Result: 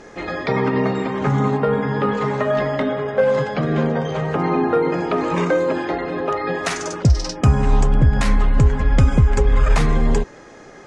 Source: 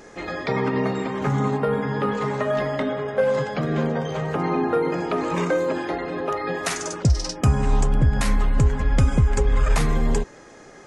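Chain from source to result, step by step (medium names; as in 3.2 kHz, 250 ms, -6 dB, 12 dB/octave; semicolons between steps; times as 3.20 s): distance through air 59 m; trim +4 dB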